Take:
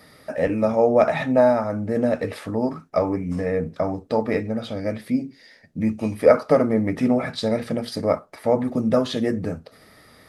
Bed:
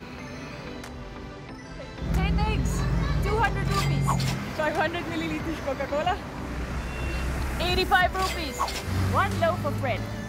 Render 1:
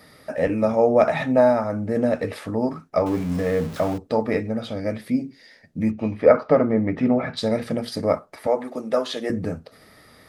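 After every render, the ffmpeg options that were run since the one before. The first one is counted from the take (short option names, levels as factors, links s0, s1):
-filter_complex "[0:a]asettb=1/sr,asplit=3[s0][s1][s2];[s0]atrim=end=3.064[s3];[s1]atrim=start=3.06:end=3.98,asetpts=PTS-STARTPTS,afade=t=in:d=0.004:c=qsin,afade=t=out:st=0.916:d=0.004:c=qsin,aeval=exprs='val(0)+0.5*0.0266*sgn(val(0))':c=same[s4];[s2]atrim=start=3.976[s5];[s3][s4]acrossfade=d=0.004:c1=hsin:c2=qsin[s6];[s6][s5]acrossfade=d=0.004:c1=qsin:c2=hsin,asettb=1/sr,asplit=3[s7][s8][s9];[s7]atrim=end=5.914[s10];[s8]atrim=start=5.91:end=7.37,asetpts=PTS-STARTPTS,afade=t=in:d=0.004:c=qsin,afade=t=out:st=1.456:d=0.004:c=qsin,lowpass=3000[s11];[s9]atrim=start=7.366[s12];[s10][s11]acrossfade=d=0.004:c1=hsin:c2=qsin[s13];[s13][s12]acrossfade=d=0.004:c1=qsin:c2=hsin,asettb=1/sr,asplit=3[s14][s15][s16];[s14]atrim=end=8.474[s17];[s15]atrim=start=8.47:end=9.3,asetpts=PTS-STARTPTS,afade=t=in:d=0.004:c=qsin,afade=t=out:st=0.826:d=0.004:c=qsin,highpass=420[s18];[s16]atrim=start=9.296[s19];[s17][s18]acrossfade=d=0.004:c1=hsin:c2=qsin[s20];[s20][s19]acrossfade=d=0.004:c1=qsin:c2=hsin"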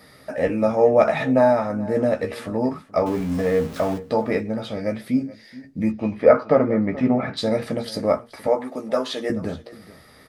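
-filter_complex "[0:a]asplit=2[s0][s1];[s1]adelay=15,volume=0.447[s2];[s0][s2]amix=inputs=2:normalize=0,aecho=1:1:427:0.112"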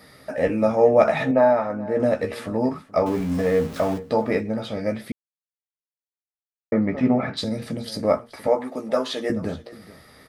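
-filter_complex "[0:a]asettb=1/sr,asplit=3[s0][s1][s2];[s0]atrim=end=1.314[s3];[s1]atrim=start=1.31:end=2,asetpts=PTS-STARTPTS,afade=t=in:d=0.004:c=qsin,afade=t=out:st=0.686:d=0.004:c=qsin,bass=f=250:g=-7,treble=f=4000:g=-12[s4];[s2]atrim=start=1.996[s5];[s3][s4]acrossfade=d=0.004:c1=hsin:c2=qsin[s6];[s6][s5]acrossfade=d=0.004:c1=qsin:c2=hsin,asettb=1/sr,asplit=3[s7][s8][s9];[s7]atrim=end=7.444[s10];[s8]atrim=start=7.44:end=8.03,asetpts=PTS-STARTPTS,afade=t=in:d=0.004:c=qsin,afade=t=out:st=0.586:d=0.004:c=qsin,acrossover=split=310|3000[s11][s12][s13];[s12]acompressor=threshold=0.01:ratio=3:attack=3.2:release=140:knee=2.83:detection=peak[s14];[s11][s14][s13]amix=inputs=3:normalize=0[s15];[s9]atrim=start=8.026[s16];[s10][s15]acrossfade=d=0.004:c1=hsin:c2=qsin[s17];[s17][s16]acrossfade=d=0.004:c1=qsin:c2=hsin,asplit=3[s18][s19][s20];[s18]atrim=end=5.12,asetpts=PTS-STARTPTS,afade=t=out:st=5.116:d=0.004:c=hsin[s21];[s19]atrim=start=5.12:end=6.72,asetpts=PTS-STARTPTS,volume=0[s22];[s20]atrim=start=6.72,asetpts=PTS-STARTPTS,afade=t=in:d=0.004:c=hsin[s23];[s21][s22][s23]concat=n=3:v=0:a=1"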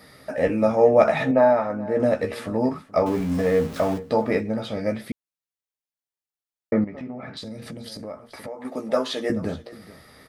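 -filter_complex "[0:a]asettb=1/sr,asplit=3[s0][s1][s2];[s0]atrim=end=6.844[s3];[s1]atrim=start=6.84:end=8.65,asetpts=PTS-STARTPTS,afade=t=in:d=0.004:c=qsin,afade=t=out:st=1.806:d=0.004:c=qsin,acompressor=threshold=0.02:ratio=4:attack=3.2:release=140:knee=1:detection=peak[s4];[s2]atrim=start=8.646[s5];[s3][s4]acrossfade=d=0.004:c1=hsin:c2=qsin[s6];[s6][s5]acrossfade=d=0.004:c1=qsin:c2=hsin"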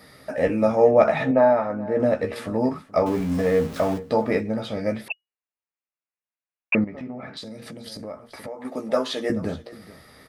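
-filter_complex "[0:a]asettb=1/sr,asplit=3[s0][s1][s2];[s0]atrim=end=0.914[s3];[s1]atrim=start=0.91:end=2.36,asetpts=PTS-STARTPTS,afade=t=in:d=0.004:c=qsin,afade=t=out:st=1.446:d=0.004:c=qsin,highshelf=f=5000:g=-7.5[s4];[s2]atrim=start=2.356[s5];[s3][s4]acrossfade=d=0.004:c1=hsin:c2=qsin[s6];[s6][s5]acrossfade=d=0.004:c1=qsin:c2=hsin,asettb=1/sr,asplit=3[s7][s8][s9];[s7]atrim=end=5.084[s10];[s8]atrim=start=5.08:end=6.75,asetpts=PTS-STARTPTS,afade=t=in:d=0.004:c=qsin,afade=t=out:st=1.666:d=0.004:c=qsin,lowpass=f=2500:t=q:w=0.5098,lowpass=f=2500:t=q:w=0.6013,lowpass=f=2500:t=q:w=0.9,lowpass=f=2500:t=q:w=2.563,afreqshift=-2900[s11];[s9]atrim=start=6.746[s12];[s10][s11]acrossfade=d=0.004:c1=hsin:c2=qsin[s13];[s13][s12]acrossfade=d=0.004:c1=qsin:c2=hsin,asettb=1/sr,asplit=3[s14][s15][s16];[s14]atrim=end=7.274[s17];[s15]atrim=start=7.27:end=7.87,asetpts=PTS-STARTPTS,afade=t=in:d=0.004:c=qsin,afade=t=out:st=0.596:d=0.004:c=qsin,highpass=f=190:p=1[s18];[s16]atrim=start=7.866[s19];[s17][s18]acrossfade=d=0.004:c1=hsin:c2=qsin[s20];[s20][s19]acrossfade=d=0.004:c1=qsin:c2=hsin"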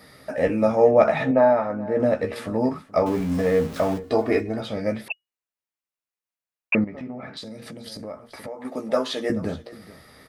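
-filter_complex "[0:a]asettb=1/sr,asplit=3[s0][s1][s2];[s0]atrim=end=4.034[s3];[s1]atrim=start=4.03:end=4.61,asetpts=PTS-STARTPTS,afade=t=in:d=0.004:c=qsin,afade=t=out:st=0.576:d=0.004:c=qsin,aecho=1:1:2.8:0.77,atrim=end_sample=25578[s4];[s2]atrim=start=4.606[s5];[s3][s4]acrossfade=d=0.004:c1=hsin:c2=qsin[s6];[s6][s5]acrossfade=d=0.004:c1=qsin:c2=hsin"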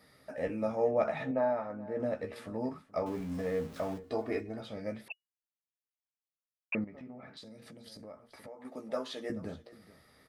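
-af "volume=0.224"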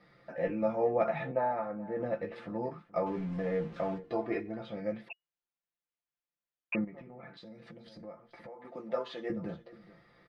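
-af "lowpass=2900,aecho=1:1:5.8:0.72"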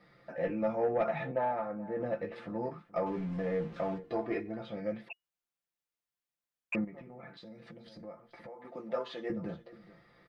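-af "asoftclip=type=tanh:threshold=0.0891"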